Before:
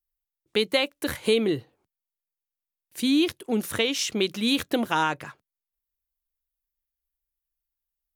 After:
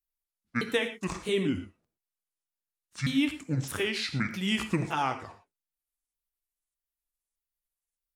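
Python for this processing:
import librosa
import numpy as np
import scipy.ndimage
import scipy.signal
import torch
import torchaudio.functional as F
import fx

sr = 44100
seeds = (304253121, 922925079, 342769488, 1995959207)

y = fx.pitch_ramps(x, sr, semitones=-10.5, every_ms=613)
y = fx.rev_gated(y, sr, seeds[0], gate_ms=140, shape='flat', drr_db=8.0)
y = F.gain(torch.from_numpy(y), -4.0).numpy()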